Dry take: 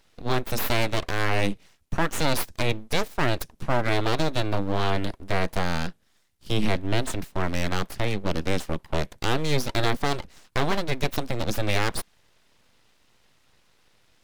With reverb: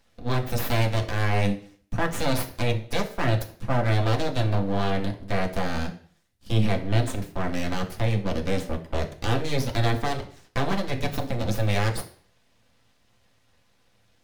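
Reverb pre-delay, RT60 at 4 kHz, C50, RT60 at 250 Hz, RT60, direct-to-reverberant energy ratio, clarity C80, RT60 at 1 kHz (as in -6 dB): 3 ms, 0.45 s, 12.0 dB, 0.50 s, 0.50 s, 1.0 dB, 15.5 dB, 0.50 s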